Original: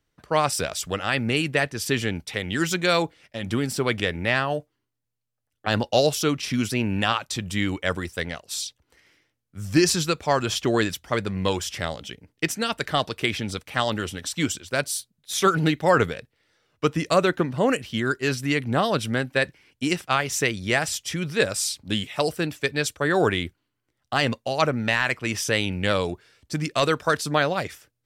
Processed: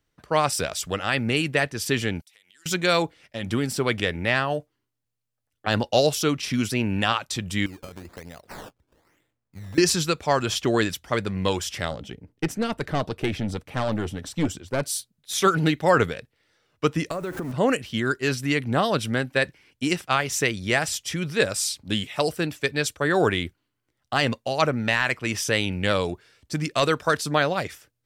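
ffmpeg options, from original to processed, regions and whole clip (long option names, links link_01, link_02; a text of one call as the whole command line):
ffmpeg -i in.wav -filter_complex "[0:a]asettb=1/sr,asplit=3[link_01][link_02][link_03];[link_01]atrim=end=2.214[link_04];[link_02]atrim=start=2.21:end=2.66,asetpts=PTS-STARTPTS,afade=type=in:duration=0.004:curve=qsin,afade=type=out:start_time=0.446:duration=0.004:curve=qsin,aderivative,acompressor=threshold=-55dB:ratio=5:attack=3.2:release=140:knee=1:detection=peak[link_05];[link_03]atrim=start=2.656[link_06];[link_04][link_05]acrossfade=duration=0.004:curve1=hsin:curve2=qsin[link_07];[link_07][link_06]acrossfade=duration=0.004:curve1=qsin:curve2=hsin,asettb=1/sr,asplit=3[link_08][link_09][link_10];[link_08]atrim=end=7.664[link_11];[link_09]atrim=start=7.66:end=9.78,asetpts=PTS-STARTPTS,afade=type=in:duration=0.004:curve=qsin,afade=type=out:start_time=2.116:duration=0.004:curve=qsin,equalizer=frequency=3300:width_type=o:width=2.9:gain=-7,acompressor=threshold=-34dB:ratio=16:attack=3.2:release=140:knee=1:detection=peak,acrusher=samples=16:mix=1:aa=0.000001:lfo=1:lforange=16:lforate=1.1[link_12];[link_10]atrim=start=9.776[link_13];[link_11][link_12]acrossfade=duration=0.004:curve1=hsin:curve2=qsin[link_14];[link_14][link_13]acrossfade=duration=0.004:curve1=qsin:curve2=hsin,asettb=1/sr,asplit=3[link_15][link_16][link_17];[link_15]atrim=end=11.914[link_18];[link_16]atrim=start=11.91:end=14.83,asetpts=PTS-STARTPTS,afade=type=in:duration=0.004:curve=qsin,afade=type=out:start_time=2.916:duration=0.004:curve=qsin,tiltshelf=frequency=1100:gain=6.5,aeval=exprs='(tanh(7.08*val(0)+0.4)-tanh(0.4))/7.08':channel_layout=same[link_19];[link_17]atrim=start=14.826[link_20];[link_18][link_19]acrossfade=duration=0.004:curve1=hsin:curve2=qsin[link_21];[link_21][link_20]acrossfade=duration=0.004:curve1=qsin:curve2=hsin,asettb=1/sr,asplit=3[link_22][link_23][link_24];[link_22]atrim=end=17.114[link_25];[link_23]atrim=start=17.11:end=17.52,asetpts=PTS-STARTPTS,afade=type=in:duration=0.004:curve=qsin,afade=type=out:start_time=0.406:duration=0.004:curve=qsin,aeval=exprs='val(0)+0.5*0.0422*sgn(val(0))':channel_layout=same,equalizer=frequency=3500:width_type=o:width=1.8:gain=-10,acompressor=threshold=-26dB:ratio=8:attack=3.2:release=140:knee=1:detection=peak[link_26];[link_24]atrim=start=17.516[link_27];[link_25][link_26]acrossfade=duration=0.004:curve1=hsin:curve2=qsin[link_28];[link_28][link_27]acrossfade=duration=0.004:curve1=qsin:curve2=hsin" out.wav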